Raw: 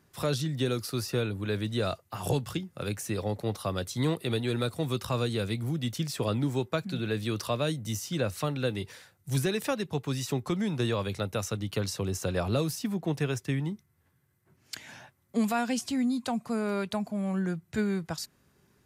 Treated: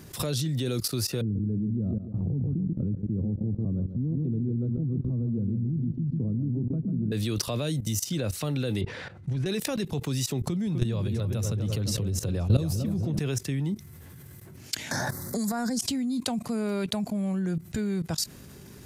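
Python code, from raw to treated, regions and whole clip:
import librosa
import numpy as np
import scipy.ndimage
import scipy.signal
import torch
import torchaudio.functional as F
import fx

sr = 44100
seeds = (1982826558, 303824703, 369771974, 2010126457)

y = fx.chain(x, sr, fx.lowpass_res(hz=220.0, q=1.7),
    fx.echo_feedback(ms=140, feedback_pct=41, wet_db=-9.0), at=(1.21, 7.12))
y = fx.chain(y, sr, fx.lowpass(hz=2100.0, slope=12),
    fx.over_compress(threshold_db=-30.0, ratio=-0.5), at=(8.81, 9.46))
y = fx.chain(y, sr, fx.peak_eq(hz=80.0, db=11.0, octaves=2.8),
    fx.echo_filtered(ms=253, feedback_pct=55, hz=1600.0, wet_db=-7.0), at=(10.41, 13.19))
y = fx.chain(y, sr, fx.cheby1_bandstop(low_hz=1700.0, high_hz=4500.0, order=2),
    fx.transient(attack_db=-4, sustain_db=11),
    fx.band_squash(depth_pct=100), at=(14.91, 15.79))
y = fx.level_steps(y, sr, step_db=19)
y = fx.peak_eq(y, sr, hz=1200.0, db=-7.5, octaves=2.2)
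y = fx.env_flatten(y, sr, amount_pct=50)
y = y * 10.0 ** (1.0 / 20.0)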